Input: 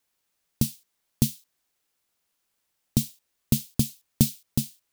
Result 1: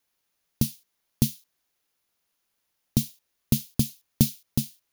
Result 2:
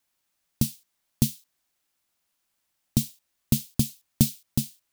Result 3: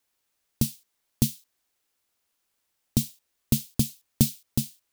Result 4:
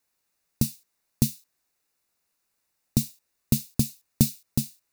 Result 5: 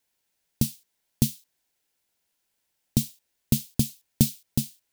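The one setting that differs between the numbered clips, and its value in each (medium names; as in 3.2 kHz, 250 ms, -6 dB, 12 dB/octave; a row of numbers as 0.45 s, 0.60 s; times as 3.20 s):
band-stop, frequency: 8 kHz, 450 Hz, 170 Hz, 3.2 kHz, 1.2 kHz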